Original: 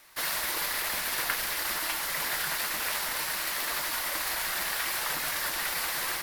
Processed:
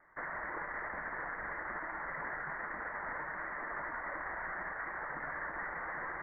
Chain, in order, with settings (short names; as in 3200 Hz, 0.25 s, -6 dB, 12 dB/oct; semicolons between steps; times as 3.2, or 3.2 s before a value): steep low-pass 2000 Hz 96 dB/oct; limiter -28 dBFS, peak gain reduction 11.5 dB; gain -3 dB